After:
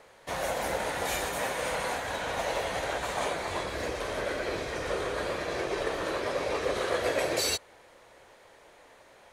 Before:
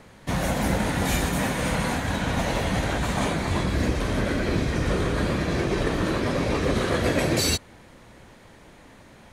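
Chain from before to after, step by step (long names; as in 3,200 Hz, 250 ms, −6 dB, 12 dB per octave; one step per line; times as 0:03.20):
low shelf with overshoot 330 Hz −12.5 dB, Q 1.5
level −4.5 dB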